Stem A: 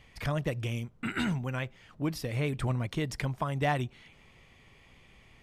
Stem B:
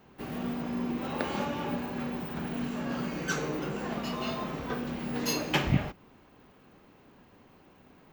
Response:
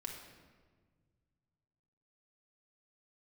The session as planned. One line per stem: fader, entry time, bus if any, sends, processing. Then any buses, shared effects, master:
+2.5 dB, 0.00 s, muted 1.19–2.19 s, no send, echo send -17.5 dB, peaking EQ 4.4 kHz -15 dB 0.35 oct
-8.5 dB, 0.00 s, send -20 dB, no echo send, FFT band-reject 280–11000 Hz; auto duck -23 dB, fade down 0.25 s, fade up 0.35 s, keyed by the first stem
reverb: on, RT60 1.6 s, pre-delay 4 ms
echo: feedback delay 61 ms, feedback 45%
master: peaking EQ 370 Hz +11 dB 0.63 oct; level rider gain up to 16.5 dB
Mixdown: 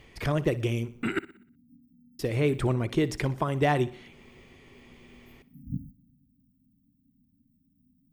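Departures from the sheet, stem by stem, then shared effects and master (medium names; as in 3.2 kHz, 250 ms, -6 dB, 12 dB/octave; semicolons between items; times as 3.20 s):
stem A: missing peaking EQ 4.4 kHz -15 dB 0.35 oct; master: missing level rider gain up to 16.5 dB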